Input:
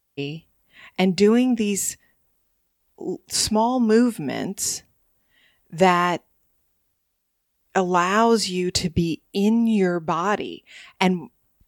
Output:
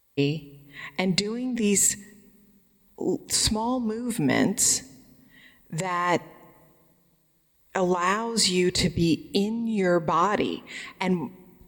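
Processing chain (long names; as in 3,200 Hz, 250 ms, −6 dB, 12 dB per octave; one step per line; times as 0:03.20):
EQ curve with evenly spaced ripples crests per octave 1, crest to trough 7 dB
compressor whose output falls as the input rises −24 dBFS, ratio −1
on a send: convolution reverb RT60 1.8 s, pre-delay 3 ms, DRR 21 dB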